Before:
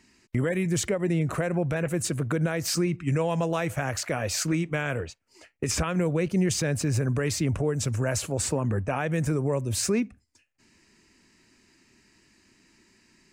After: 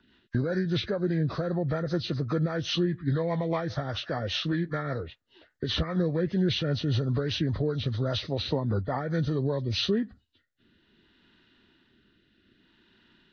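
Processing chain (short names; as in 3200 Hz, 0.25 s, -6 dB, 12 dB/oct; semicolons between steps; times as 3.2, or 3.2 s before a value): nonlinear frequency compression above 1000 Hz 1.5:1; rotary speaker horn 5 Hz, later 0.6 Hz, at 9.48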